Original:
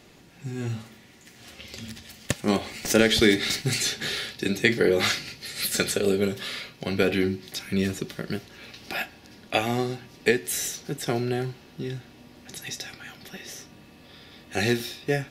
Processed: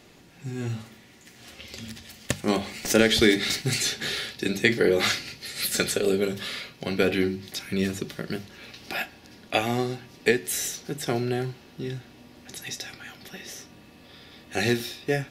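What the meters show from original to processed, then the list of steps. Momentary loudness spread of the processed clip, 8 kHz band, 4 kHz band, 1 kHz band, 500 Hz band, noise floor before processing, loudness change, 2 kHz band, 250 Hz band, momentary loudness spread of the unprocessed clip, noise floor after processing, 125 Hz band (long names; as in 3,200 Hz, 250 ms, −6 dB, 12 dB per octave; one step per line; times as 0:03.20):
18 LU, 0.0 dB, 0.0 dB, 0.0 dB, 0.0 dB, −52 dBFS, 0.0 dB, 0.0 dB, −0.5 dB, 18 LU, −52 dBFS, −1.0 dB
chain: mains-hum notches 50/100/150/200 Hz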